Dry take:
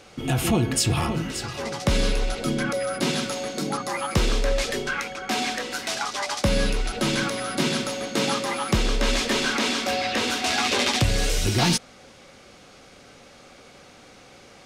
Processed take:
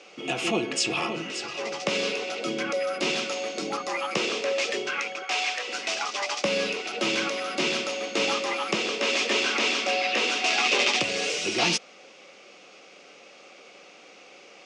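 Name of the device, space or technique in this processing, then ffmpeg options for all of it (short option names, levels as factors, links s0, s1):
television speaker: -filter_complex "[0:a]asettb=1/sr,asplit=3[s0][s1][s2];[s0]atrim=end=5.234[s3];[s1]atrim=start=5.23:end=5.68,asetpts=PTS-STARTPTS,afade=t=in:d=0.004:c=qsin,afade=t=out:st=0.446:d=0.004:c=qsin,highpass=610[s4];[s2]atrim=start=5.676[s5];[s3][s4]acrossfade=d=0.004:c1=hsin:c2=qsin[s6];[s6][s5]acrossfade=d=0.004:c1=qsin:c2=hsin,highpass=f=230:w=0.5412,highpass=f=230:w=1.3066,equalizer=f=250:t=q:w=4:g=-10,equalizer=f=910:t=q:w=4:g=-4,equalizer=f=1600:t=q:w=4:g=-6,equalizer=f=2600:t=q:w=4:g=7,equalizer=f=4000:t=q:w=4:g=-4,lowpass=f=6800:w=0.5412,lowpass=f=6800:w=1.3066"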